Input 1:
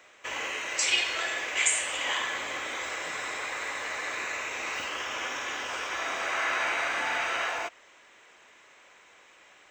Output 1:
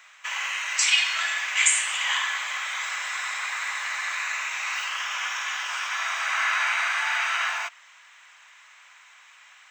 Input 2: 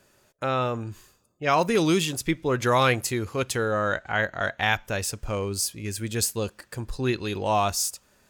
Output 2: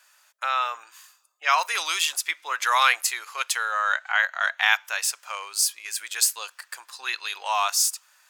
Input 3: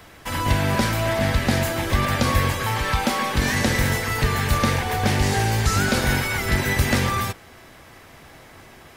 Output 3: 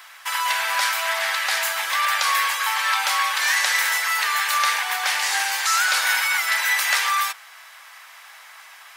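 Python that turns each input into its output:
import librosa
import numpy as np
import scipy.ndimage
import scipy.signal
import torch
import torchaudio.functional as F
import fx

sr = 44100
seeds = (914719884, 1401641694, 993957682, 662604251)

y = scipy.signal.sosfilt(scipy.signal.butter(4, 970.0, 'highpass', fs=sr, output='sos'), x)
y = F.gain(torch.from_numpy(y), 5.0).numpy()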